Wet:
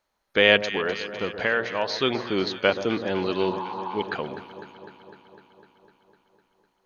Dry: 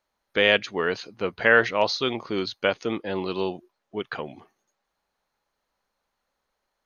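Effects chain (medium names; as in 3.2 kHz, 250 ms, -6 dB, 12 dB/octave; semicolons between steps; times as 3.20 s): 0.61–1.99 s: compression 2:1, threshold -29 dBFS, peak gain reduction 9.5 dB; 3.46–4.01 s: spectral replace 710–1600 Hz before; echo whose repeats swap between lows and highs 126 ms, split 1.2 kHz, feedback 83%, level -11.5 dB; trim +2 dB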